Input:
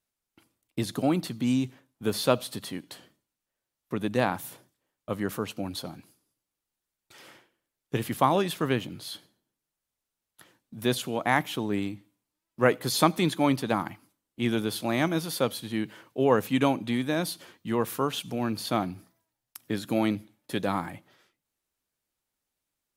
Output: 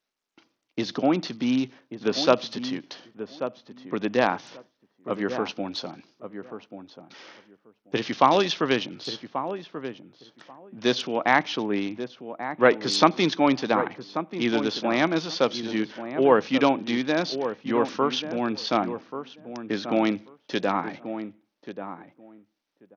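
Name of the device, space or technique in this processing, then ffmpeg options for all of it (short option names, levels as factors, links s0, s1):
Bluetooth headset: -filter_complex "[0:a]asettb=1/sr,asplit=3[s0][s1][s2];[s0]atrim=end=7.964[s3];[s1]atrim=start=7.96:end=8.86,asetpts=PTS-STARTPTS,afade=t=in:d=0.004:c=qsin,afade=t=out:st=0.896:d=0.004:c=qsin,equalizer=f=3600:t=o:w=1.1:g=4[s4];[s2]atrim=start=8.856[s5];[s3][s4]acrossfade=d=0.004:c1=hsin:c2=qsin[s6];[s6][s5]acrossfade=d=0.004:c1=qsin:c2=hsin,highpass=240,asplit=2[s7][s8];[s8]adelay=1136,lowpass=f=1200:p=1,volume=0.335,asplit=2[s9][s10];[s10]adelay=1136,lowpass=f=1200:p=1,volume=0.15[s11];[s7][s9][s11]amix=inputs=3:normalize=0,aresample=16000,aresample=44100,volume=1.68" -ar 48000 -c:a sbc -b:a 64k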